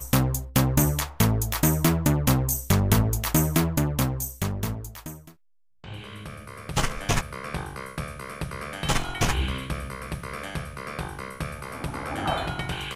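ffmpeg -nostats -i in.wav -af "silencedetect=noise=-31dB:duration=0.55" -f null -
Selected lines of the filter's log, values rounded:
silence_start: 5.11
silence_end: 5.84 | silence_duration: 0.73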